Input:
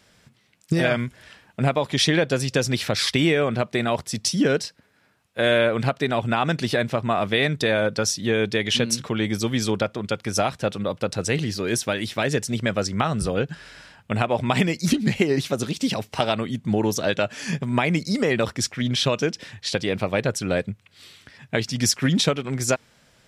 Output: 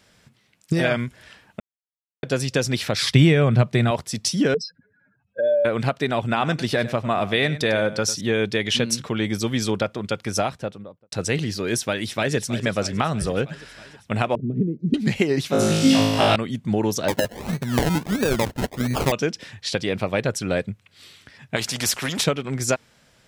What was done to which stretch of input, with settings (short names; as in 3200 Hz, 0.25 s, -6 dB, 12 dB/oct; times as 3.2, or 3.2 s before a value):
1.6–2.23 mute
3.02–3.91 bell 130 Hz +13 dB 1 oct
4.54–5.65 spectral contrast raised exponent 3.2
6.23–8.21 echo 0.1 s -15 dB
10.29–11.12 studio fade out
11.76–12.36 echo throw 0.32 s, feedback 70%, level -13 dB
14.35–14.94 elliptic band-pass 120–410 Hz
15.5–16.36 flutter echo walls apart 3.2 m, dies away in 1.3 s
17.08–19.12 decimation with a swept rate 30×, swing 60% 1.5 Hz
21.56–22.24 spectral compressor 2:1